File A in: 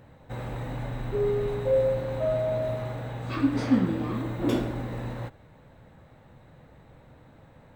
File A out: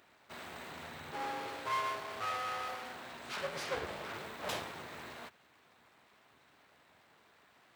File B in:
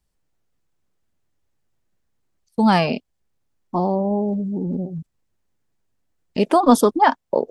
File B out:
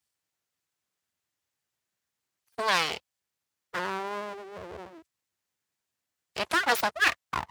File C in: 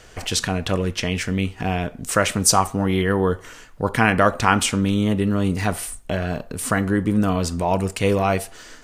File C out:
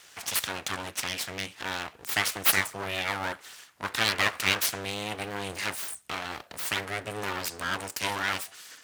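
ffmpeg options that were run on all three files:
-af "aeval=exprs='abs(val(0))':c=same,highpass=f=72:w=0.5412,highpass=f=72:w=1.3066,tiltshelf=f=730:g=-8.5,volume=0.398"

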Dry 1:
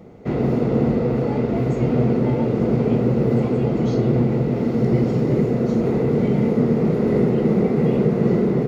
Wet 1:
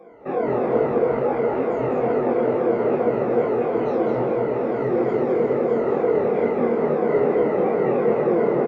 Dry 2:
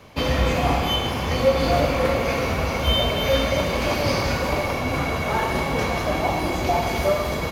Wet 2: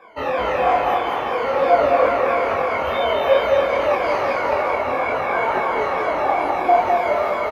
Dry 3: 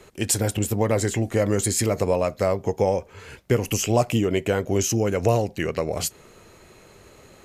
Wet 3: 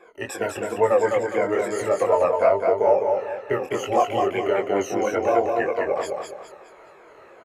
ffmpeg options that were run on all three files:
-filter_complex "[0:a]afftfilt=real='re*pow(10,20/40*sin(2*PI*(1.8*log(max(b,1)*sr/1024/100)/log(2)-(-3)*(pts-256)/sr)))':imag='im*pow(10,20/40*sin(2*PI*(1.8*log(max(b,1)*sr/1024/100)/log(2)-(-3)*(pts-256)/sr)))':win_size=1024:overlap=0.75,acrossover=split=390 2100:gain=0.0708 1 0.0794[s0][s1][s2];[s0][s1][s2]amix=inputs=3:normalize=0,flanger=delay=20:depth=5.8:speed=2.3,aecho=1:1:207|414|621|828|1035:0.631|0.233|0.0864|0.032|0.0118,volume=1.58"

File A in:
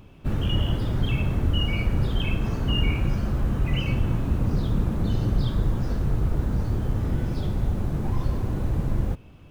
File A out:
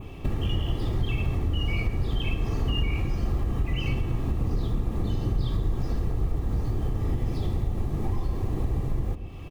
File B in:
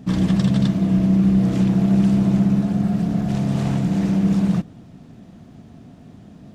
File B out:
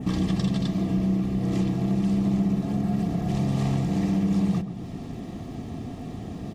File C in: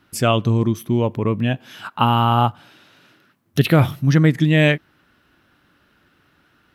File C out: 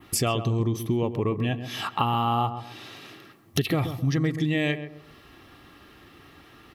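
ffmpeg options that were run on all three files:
-filter_complex "[0:a]adynamicequalizer=threshold=0.00708:dfrequency=4800:dqfactor=1.6:tfrequency=4800:tqfactor=1.6:attack=5:release=100:ratio=0.375:range=1.5:mode=boostabove:tftype=bell,aecho=1:1:2.6:0.32,acompressor=threshold=0.02:ratio=4,asuperstop=centerf=1500:order=8:qfactor=7.8,asplit=2[s0][s1];[s1]adelay=132,lowpass=f=1100:p=1,volume=0.355,asplit=2[s2][s3];[s3]adelay=132,lowpass=f=1100:p=1,volume=0.36,asplit=2[s4][s5];[s5]adelay=132,lowpass=f=1100:p=1,volume=0.36,asplit=2[s6][s7];[s7]adelay=132,lowpass=f=1100:p=1,volume=0.36[s8];[s0][s2][s4][s6][s8]amix=inputs=5:normalize=0,volume=2.66"

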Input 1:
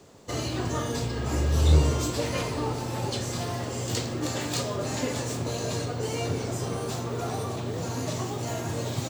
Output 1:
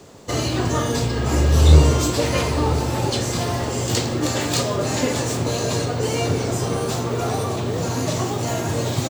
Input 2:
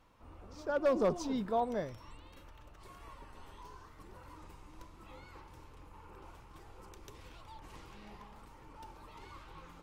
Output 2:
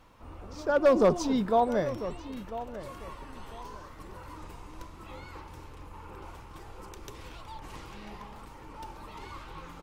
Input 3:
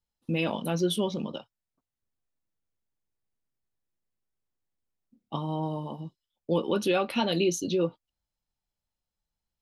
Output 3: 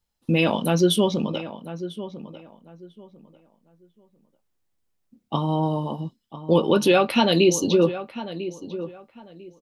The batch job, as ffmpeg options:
-filter_complex "[0:a]asplit=2[s0][s1];[s1]adelay=997,lowpass=f=2200:p=1,volume=0.224,asplit=2[s2][s3];[s3]adelay=997,lowpass=f=2200:p=1,volume=0.24,asplit=2[s4][s5];[s5]adelay=997,lowpass=f=2200:p=1,volume=0.24[s6];[s0][s2][s4][s6]amix=inputs=4:normalize=0,volume=2.51"

